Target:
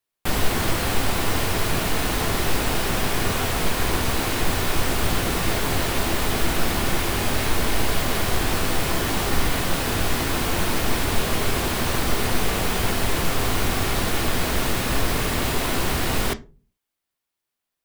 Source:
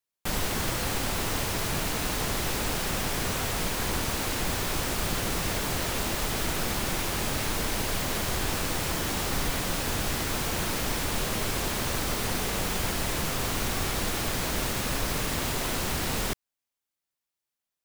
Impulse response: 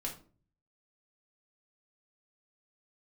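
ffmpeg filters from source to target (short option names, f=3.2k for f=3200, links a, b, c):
-filter_complex "[0:a]asplit=2[a][b];[b]lowpass=f=6.8k:w=0.5412,lowpass=f=6.8k:w=1.3066[c];[1:a]atrim=start_sample=2205,asetrate=61740,aresample=44100[d];[c][d]afir=irnorm=-1:irlink=0,volume=-3dB[e];[a][e]amix=inputs=2:normalize=0,volume=3.5dB"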